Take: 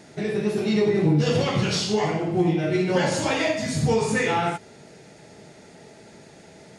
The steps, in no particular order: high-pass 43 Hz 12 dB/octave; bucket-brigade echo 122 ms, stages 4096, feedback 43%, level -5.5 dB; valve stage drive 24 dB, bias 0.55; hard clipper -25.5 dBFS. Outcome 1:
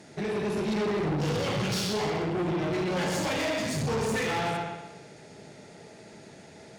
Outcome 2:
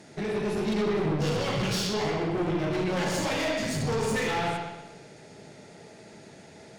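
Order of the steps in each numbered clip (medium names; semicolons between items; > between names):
bucket-brigade echo > valve stage > hard clipper > high-pass; high-pass > valve stage > hard clipper > bucket-brigade echo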